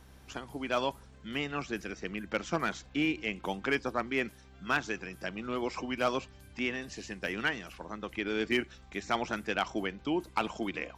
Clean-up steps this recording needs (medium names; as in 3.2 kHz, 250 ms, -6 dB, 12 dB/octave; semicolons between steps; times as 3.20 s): clip repair -18.5 dBFS; de-hum 65.4 Hz, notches 4